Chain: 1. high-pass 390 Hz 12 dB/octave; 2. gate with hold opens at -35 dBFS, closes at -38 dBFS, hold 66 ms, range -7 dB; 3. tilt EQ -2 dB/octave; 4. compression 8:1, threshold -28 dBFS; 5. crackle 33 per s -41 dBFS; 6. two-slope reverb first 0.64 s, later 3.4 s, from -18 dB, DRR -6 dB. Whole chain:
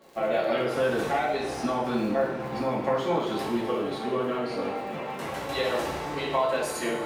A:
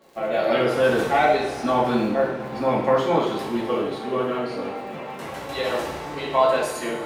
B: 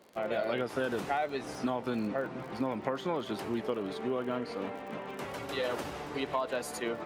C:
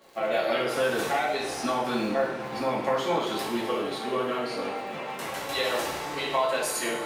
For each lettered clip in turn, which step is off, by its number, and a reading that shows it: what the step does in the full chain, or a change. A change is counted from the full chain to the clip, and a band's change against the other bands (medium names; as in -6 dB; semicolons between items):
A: 4, mean gain reduction 2.5 dB; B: 6, crest factor change +2.5 dB; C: 3, 8 kHz band +6.0 dB